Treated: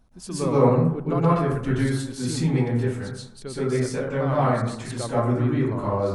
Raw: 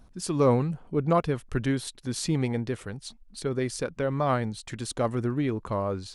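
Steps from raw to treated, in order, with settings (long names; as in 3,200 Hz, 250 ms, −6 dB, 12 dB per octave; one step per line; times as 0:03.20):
dense smooth reverb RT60 0.76 s, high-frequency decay 0.35×, pre-delay 110 ms, DRR −10 dB
level −6.5 dB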